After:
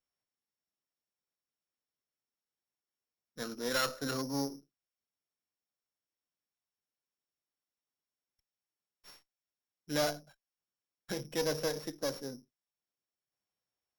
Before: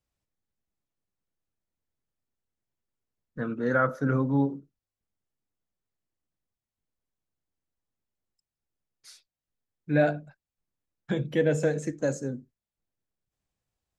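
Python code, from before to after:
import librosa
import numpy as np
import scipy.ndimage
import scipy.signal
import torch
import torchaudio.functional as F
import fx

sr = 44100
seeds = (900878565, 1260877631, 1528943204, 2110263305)

y = np.r_[np.sort(x[:len(x) // 8 * 8].reshape(-1, 8), axis=1).ravel(), x[len(x) // 8 * 8:]]
y = fx.highpass(y, sr, hz=510.0, slope=6)
y = fx.tube_stage(y, sr, drive_db=24.0, bias=0.55)
y = fx.running_max(y, sr, window=3)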